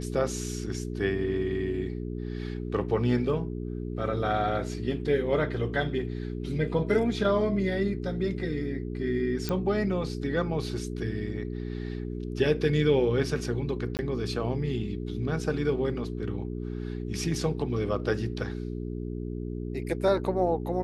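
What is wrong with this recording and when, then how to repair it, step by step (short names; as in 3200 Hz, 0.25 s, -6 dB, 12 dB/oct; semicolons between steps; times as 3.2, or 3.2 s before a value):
hum 60 Hz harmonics 7 -34 dBFS
9.49 pop -16 dBFS
13.97–13.99 gap 19 ms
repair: de-click; de-hum 60 Hz, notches 7; interpolate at 13.97, 19 ms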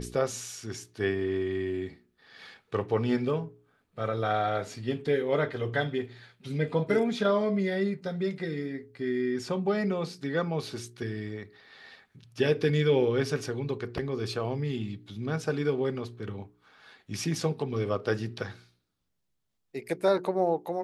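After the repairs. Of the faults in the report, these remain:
none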